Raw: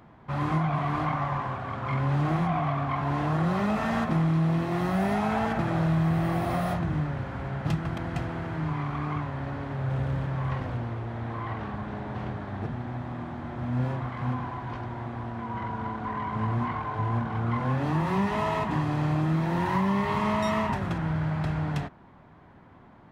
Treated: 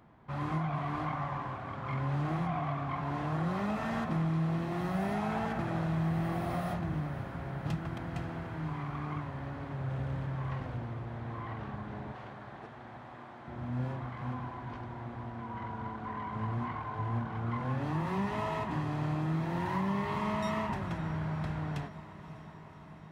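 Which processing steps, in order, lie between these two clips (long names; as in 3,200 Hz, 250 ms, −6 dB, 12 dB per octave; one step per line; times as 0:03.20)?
0:12.12–0:13.48: Bessel high-pass filter 520 Hz, order 2
feedback delay with all-pass diffusion 558 ms, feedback 71%, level −15 dB
level −7 dB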